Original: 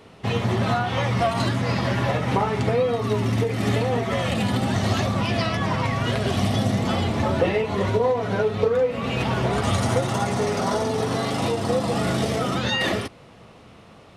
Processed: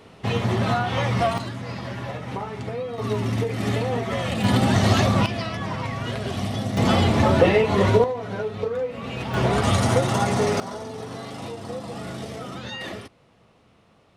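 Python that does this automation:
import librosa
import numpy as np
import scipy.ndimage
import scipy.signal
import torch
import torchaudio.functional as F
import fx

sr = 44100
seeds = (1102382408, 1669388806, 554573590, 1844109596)

y = fx.gain(x, sr, db=fx.steps((0.0, 0.0), (1.38, -9.0), (2.98, -2.0), (4.44, 4.0), (5.26, -5.0), (6.77, 4.5), (8.04, -6.0), (9.34, 2.0), (10.6, -10.5)))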